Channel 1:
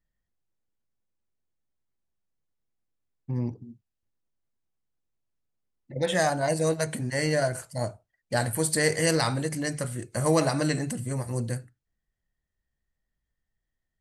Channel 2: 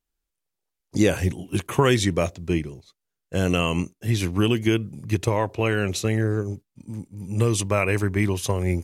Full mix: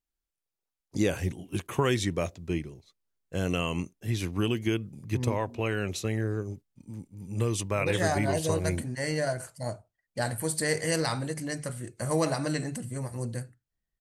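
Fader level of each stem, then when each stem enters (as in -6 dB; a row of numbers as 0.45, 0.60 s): -4.0, -7.0 dB; 1.85, 0.00 s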